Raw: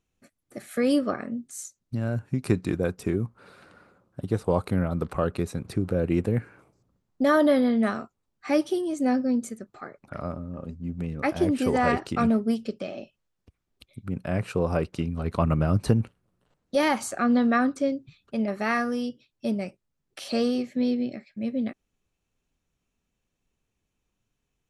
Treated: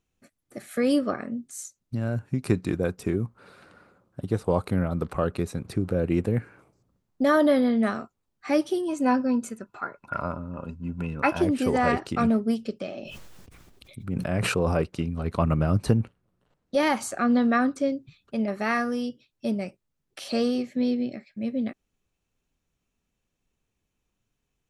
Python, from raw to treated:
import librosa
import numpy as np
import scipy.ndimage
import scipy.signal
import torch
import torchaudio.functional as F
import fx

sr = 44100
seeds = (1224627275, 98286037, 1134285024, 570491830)

y = fx.small_body(x, sr, hz=(1000.0, 1400.0, 2600.0), ring_ms=30, db=16, at=(8.88, 11.42))
y = fx.sustainer(y, sr, db_per_s=22.0, at=(13.01, 14.82))
y = fx.high_shelf(y, sr, hz=fx.line((15.95, 3900.0), (16.85, 7700.0)), db=-6.5, at=(15.95, 16.85), fade=0.02)